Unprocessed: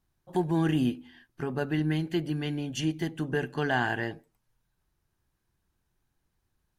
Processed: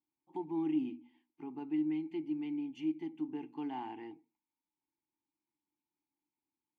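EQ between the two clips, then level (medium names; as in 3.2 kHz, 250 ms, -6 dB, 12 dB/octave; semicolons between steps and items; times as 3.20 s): vowel filter u; bass shelf 160 Hz -7 dB; hum notches 60/120/180/240 Hz; 0.0 dB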